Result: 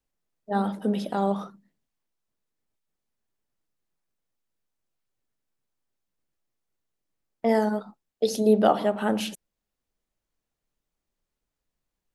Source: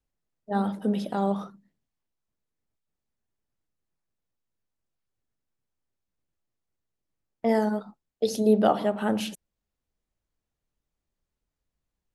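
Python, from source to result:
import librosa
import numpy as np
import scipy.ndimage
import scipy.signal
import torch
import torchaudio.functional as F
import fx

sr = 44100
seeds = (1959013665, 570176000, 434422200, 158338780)

y = fx.peak_eq(x, sr, hz=69.0, db=-7.0, octaves=2.2)
y = y * 10.0 ** (2.0 / 20.0)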